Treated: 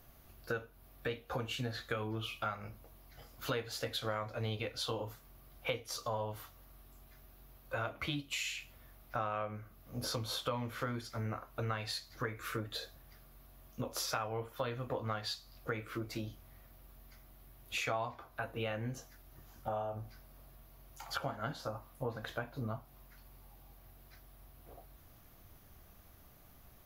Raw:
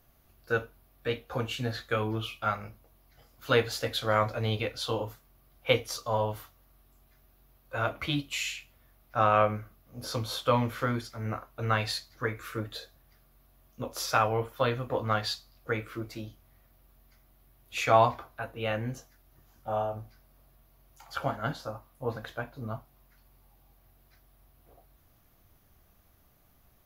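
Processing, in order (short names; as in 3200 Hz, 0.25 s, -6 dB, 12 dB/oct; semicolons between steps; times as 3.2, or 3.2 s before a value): compressor 5:1, threshold -40 dBFS, peak gain reduction 21 dB; gain +4 dB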